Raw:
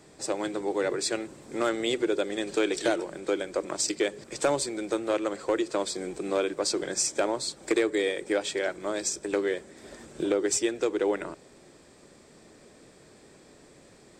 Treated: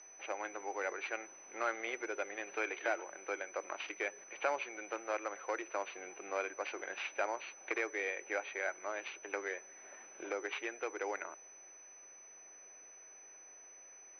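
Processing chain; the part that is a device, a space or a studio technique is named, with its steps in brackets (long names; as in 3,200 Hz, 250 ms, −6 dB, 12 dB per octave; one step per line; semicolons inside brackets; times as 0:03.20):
toy sound module (linearly interpolated sample-rate reduction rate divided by 4×; switching amplifier with a slow clock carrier 6,000 Hz; loudspeaker in its box 740–4,500 Hz, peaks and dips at 780 Hz +4 dB, 1,500 Hz +3 dB, 2,300 Hz +8 dB, 3,400 Hz −8 dB)
level −5.5 dB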